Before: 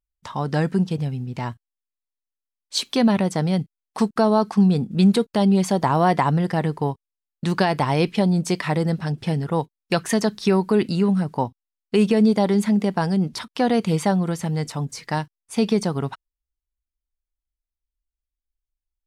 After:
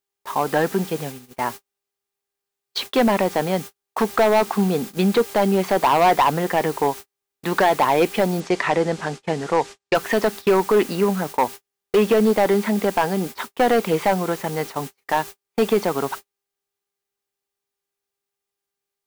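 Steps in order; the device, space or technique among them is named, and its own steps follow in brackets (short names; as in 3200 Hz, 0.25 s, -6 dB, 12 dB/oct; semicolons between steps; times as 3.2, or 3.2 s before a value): aircraft radio (BPF 380–2500 Hz; hard clip -18.5 dBFS, distortion -11 dB; buzz 400 Hz, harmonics 29, -53 dBFS -6 dB/oct; white noise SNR 17 dB; gate -37 dBFS, range -47 dB); 8.4–9.95 LPF 8000 Hz 24 dB/oct; gain +7.5 dB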